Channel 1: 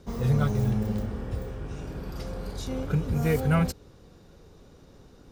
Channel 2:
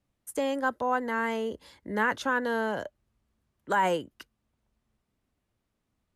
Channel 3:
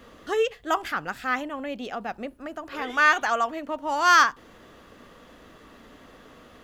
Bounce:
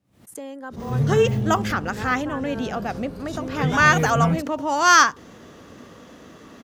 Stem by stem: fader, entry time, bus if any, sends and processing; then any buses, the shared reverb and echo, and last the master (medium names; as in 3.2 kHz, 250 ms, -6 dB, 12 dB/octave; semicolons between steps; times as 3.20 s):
-4.0 dB, 0.70 s, no send, none
-10.5 dB, 0.00 s, no send, none
+2.0 dB, 0.80 s, no send, peaking EQ 6.1 kHz +8 dB 0.58 oct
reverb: none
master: high-pass 110 Hz 12 dB/octave; bass shelf 370 Hz +8.5 dB; swell ahead of each attack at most 110 dB/s